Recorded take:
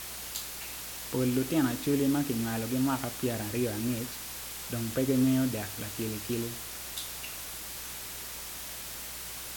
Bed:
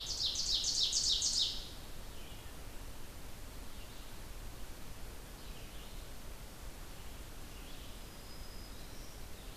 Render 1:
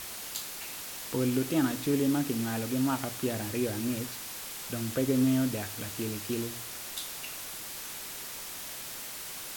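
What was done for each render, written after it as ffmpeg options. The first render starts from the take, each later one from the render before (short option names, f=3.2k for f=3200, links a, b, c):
-af "bandreject=f=60:t=h:w=4,bandreject=f=120:t=h:w=4,bandreject=f=180:t=h:w=4"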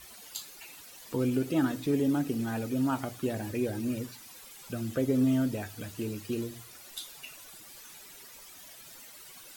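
-af "afftdn=nr=13:nf=-41"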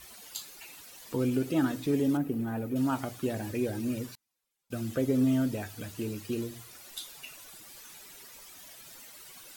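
-filter_complex "[0:a]asettb=1/sr,asplit=3[a][b][c];[a]atrim=end=2.174[d];[b]atrim=start=2.17:end=2.76,asetpts=PTS-STARTPTS,afade=t=in:d=0.004:c=qsin,afade=t=out:st=0.586:d=0.004:c=qsin,equalizer=f=5.5k:t=o:w=2.2:g=-15[e];[c]atrim=start=2.756[f];[d][e]acrossfade=d=0.004:c1=hsin:c2=qsin[g];[g][f]acrossfade=d=0.004:c1=qsin:c2=hsin,asettb=1/sr,asplit=3[h][i][j];[h]atrim=end=4.154[k];[i]atrim=start=4.15:end=4.83,asetpts=PTS-STARTPTS,afade=t=in:d=0.004:c=qsin,afade=t=out:st=0.676:d=0.004:c=qsin,agate=range=-35dB:threshold=-43dB:ratio=16:release=100:detection=peak[l];[j]atrim=start=4.826[m];[k][l]acrossfade=d=0.004:c1=hsin:c2=qsin[n];[n][m]acrossfade=d=0.004:c1=qsin:c2=hsin"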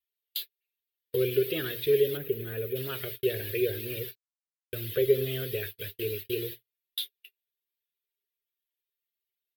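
-af "agate=range=-50dB:threshold=-40dB:ratio=16:detection=peak,firequalizer=gain_entry='entry(110,0);entry(270,-22);entry(400,12);entry(790,-21);entry(1700,5);entry(3500,12);entry(6600,-14);entry(13000,14)':delay=0.05:min_phase=1"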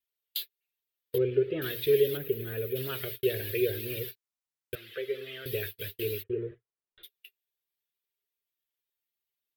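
-filter_complex "[0:a]asettb=1/sr,asplit=3[a][b][c];[a]atrim=end=1.184[d];[b]atrim=start=1.18:end=1.62,asetpts=PTS-STARTPTS,afade=t=in:d=0.004:c=qsin,afade=t=out:st=0.436:d=0.004:c=qsin,lowpass=1.5k[e];[c]atrim=start=1.616[f];[d][e]acrossfade=d=0.004:c1=hsin:c2=qsin[g];[g][f]acrossfade=d=0.004:c1=qsin:c2=hsin,asettb=1/sr,asplit=3[h][i][j];[h]atrim=end=4.754[k];[i]atrim=start=4.75:end=5.46,asetpts=PTS-STARTPTS,afade=t=in:d=0.004:c=qsin,afade=t=out:st=0.706:d=0.004:c=qsin,bandpass=f=1.6k:t=q:w=0.89[l];[j]atrim=start=5.456[m];[k][l]acrossfade=d=0.004:c1=hsin:c2=qsin[n];[n][m]acrossfade=d=0.004:c1=qsin:c2=hsin,asplit=3[o][p][q];[o]afade=t=out:st=6.22:d=0.02[r];[p]lowpass=f=1.5k:w=0.5412,lowpass=f=1.5k:w=1.3066,afade=t=in:st=6.22:d=0.02,afade=t=out:st=7.03:d=0.02[s];[q]afade=t=in:st=7.03:d=0.02[t];[r][s][t]amix=inputs=3:normalize=0"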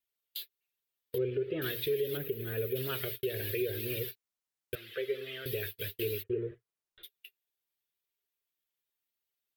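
-af "alimiter=limit=-23.5dB:level=0:latency=1:release=176"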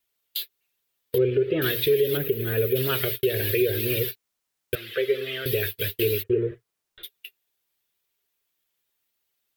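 -af "volume=10.5dB"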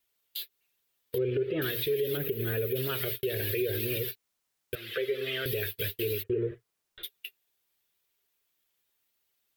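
-af "alimiter=limit=-21.5dB:level=0:latency=1:release=195"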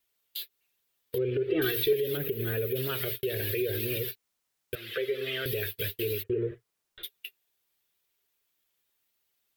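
-filter_complex "[0:a]asettb=1/sr,asplit=3[a][b][c];[a]atrim=end=1.494[d];[b]atrim=start=1.49:end=1.93,asetpts=PTS-STARTPTS,afade=t=in:d=0.004:c=qsin,afade=t=out:st=0.436:d=0.004:c=qsin,aecho=1:1:2.6:0.95,atrim=end_sample=19404[e];[c]atrim=start=1.926[f];[d][e]acrossfade=d=0.004:c1=hsin:c2=qsin[g];[g][f]acrossfade=d=0.004:c1=qsin:c2=hsin"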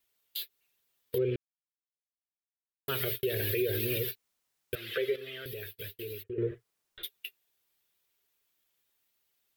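-filter_complex "[0:a]asplit=5[a][b][c][d][e];[a]atrim=end=1.36,asetpts=PTS-STARTPTS,afade=t=out:st=1.356:d=0.004:c=hsin[f];[b]atrim=start=1.36:end=2.88,asetpts=PTS-STARTPTS,volume=0[g];[c]atrim=start=2.88:end=5.162,asetpts=PTS-STARTPTS,afade=t=in:d=0.004:c=hsin[h];[d]atrim=start=5.158:end=6.382,asetpts=PTS-STARTPTS,volume=-9.5dB[i];[e]atrim=start=6.378[j];[f][g][h]concat=n=3:v=0:a=1[k];[k][i]acrossfade=d=0.004:c1=hsin:c2=hsin[l];[l][j]acrossfade=d=0.004:c1=hsin:c2=hsin"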